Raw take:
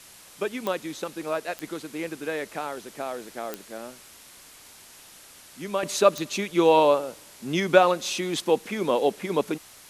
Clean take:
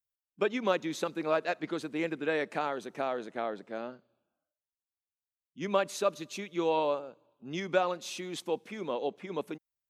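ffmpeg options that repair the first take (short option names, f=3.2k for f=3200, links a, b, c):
-af "adeclick=t=4,afwtdn=0.0045,asetnsamples=n=441:p=0,asendcmd='5.83 volume volume -10.5dB',volume=0dB"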